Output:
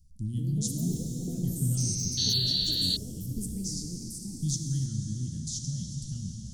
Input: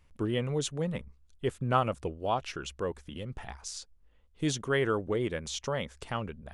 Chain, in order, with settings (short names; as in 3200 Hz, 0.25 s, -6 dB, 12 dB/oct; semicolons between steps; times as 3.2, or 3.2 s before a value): plate-style reverb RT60 5 s, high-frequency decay 0.95×, DRR 2 dB; painted sound noise, 2.17–2.97, 1400–4600 Hz -19 dBFS; elliptic band-stop 190–5100 Hz, stop band 40 dB; echoes that change speed 0.235 s, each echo +6 st, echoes 3, each echo -6 dB; bell 1100 Hz -9 dB 0.37 oct; gain +4.5 dB